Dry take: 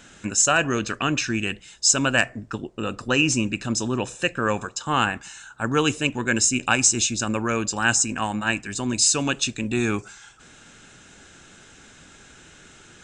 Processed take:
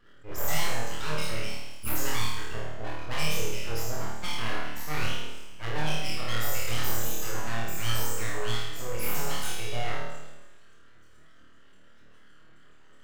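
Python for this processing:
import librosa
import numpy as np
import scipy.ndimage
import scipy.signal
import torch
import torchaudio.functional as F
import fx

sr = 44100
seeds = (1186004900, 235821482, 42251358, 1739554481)

y = fx.spec_trails(x, sr, decay_s=1.04)
y = fx.dereverb_blind(y, sr, rt60_s=0.74)
y = fx.spec_topn(y, sr, count=16)
y = 10.0 ** (-14.5 / 20.0) * np.tanh(y / 10.0 ** (-14.5 / 20.0))
y = fx.rev_schroeder(y, sr, rt60_s=1.3, comb_ms=30, drr_db=9.0)
y = np.abs(y)
y = fx.room_flutter(y, sr, wall_m=4.5, rt60_s=0.82)
y = fx.attack_slew(y, sr, db_per_s=240.0)
y = F.gain(torch.from_numpy(y), -8.0).numpy()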